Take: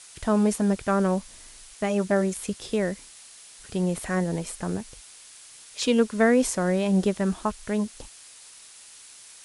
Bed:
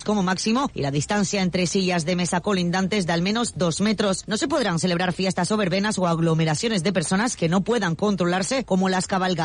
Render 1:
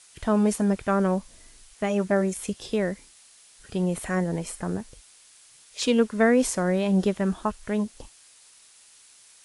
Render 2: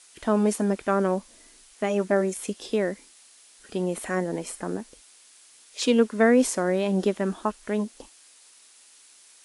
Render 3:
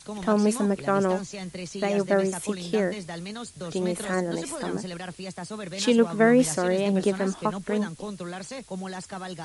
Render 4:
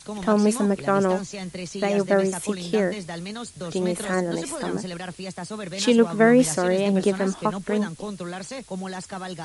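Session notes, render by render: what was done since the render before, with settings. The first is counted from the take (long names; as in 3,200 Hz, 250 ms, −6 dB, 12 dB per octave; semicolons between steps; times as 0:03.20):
noise reduction from a noise print 6 dB
low shelf with overshoot 180 Hz −11 dB, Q 1.5
mix in bed −14 dB
level +2.5 dB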